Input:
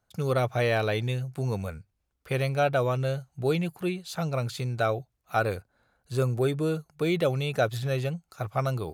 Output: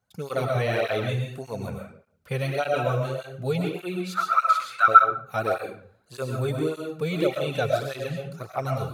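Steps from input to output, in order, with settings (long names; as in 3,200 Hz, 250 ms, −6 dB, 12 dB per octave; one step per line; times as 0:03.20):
0:04.06–0:04.88: high-pass with resonance 1,300 Hz, resonance Q 12
comb and all-pass reverb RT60 0.55 s, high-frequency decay 0.7×, pre-delay 75 ms, DRR 0.5 dB
through-zero flanger with one copy inverted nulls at 1.7 Hz, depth 3.4 ms
level +1 dB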